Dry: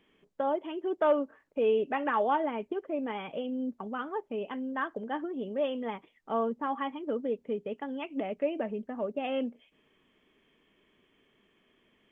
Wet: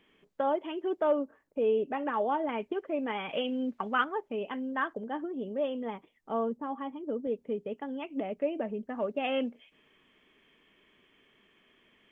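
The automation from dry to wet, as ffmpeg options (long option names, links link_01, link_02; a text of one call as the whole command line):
ffmpeg -i in.wav -af "asetnsamples=nb_out_samples=441:pad=0,asendcmd='1.01 equalizer g -6;2.49 equalizer g 4.5;3.29 equalizer g 14;4.04 equalizer g 2.5;4.93 equalizer g -4.5;6.57 equalizer g -10.5;7.27 equalizer g -3;8.9 equalizer g 5.5',equalizer=frequency=2200:width_type=o:width=2.5:gain=3" out.wav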